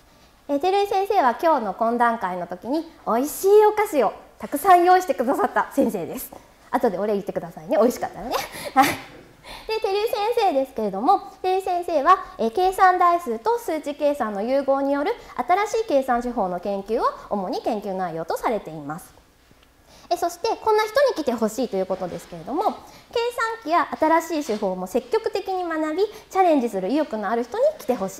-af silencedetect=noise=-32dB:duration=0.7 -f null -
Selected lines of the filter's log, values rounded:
silence_start: 19.03
silence_end: 20.11 | silence_duration: 1.08